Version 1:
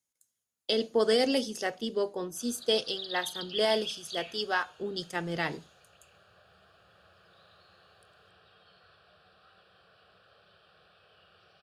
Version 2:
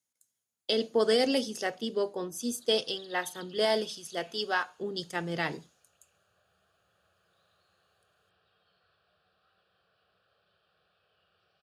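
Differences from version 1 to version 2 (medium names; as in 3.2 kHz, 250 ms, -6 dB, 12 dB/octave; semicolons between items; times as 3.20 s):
speech: add high-pass 59 Hz; background -11.0 dB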